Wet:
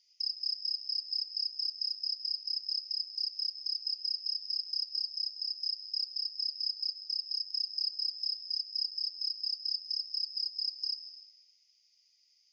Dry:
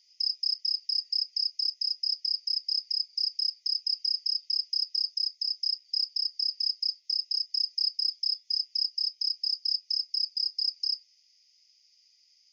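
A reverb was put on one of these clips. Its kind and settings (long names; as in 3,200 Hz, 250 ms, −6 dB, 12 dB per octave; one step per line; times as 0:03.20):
dense smooth reverb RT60 1.7 s, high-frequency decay 0.65×, pre-delay 115 ms, DRR 9 dB
level −5.5 dB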